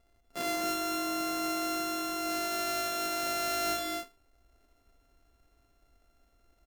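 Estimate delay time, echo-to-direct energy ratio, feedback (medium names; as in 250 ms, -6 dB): 75 ms, -2.0 dB, no regular repeats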